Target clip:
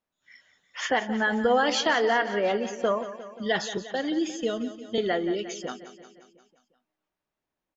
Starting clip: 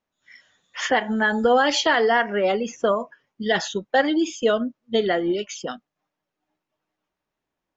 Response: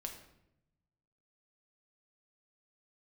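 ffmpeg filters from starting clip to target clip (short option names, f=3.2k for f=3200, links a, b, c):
-filter_complex "[0:a]asettb=1/sr,asplit=3[a][b][c];[a]atrim=end=3.774[d];[b]atrim=start=3.77:end=4.98,asetpts=PTS-STARTPTS,afade=t=in:d=0.004:c=qsin,afade=t=out:st=1.206:d=0.004:c=qsin,acrossover=split=410|3000[e][f][g];[f]acompressor=threshold=-31dB:ratio=3[h];[e][h][g]amix=inputs=3:normalize=0[i];[c]atrim=start=4.976[j];[d][i]acrossfade=d=0.004:c1=hsin:c2=qsin[k];[k][j]acrossfade=d=0.004:c1=qsin:c2=hsin,aecho=1:1:177|354|531|708|885|1062:0.224|0.132|0.0779|0.046|0.0271|0.016,volume=-4.5dB"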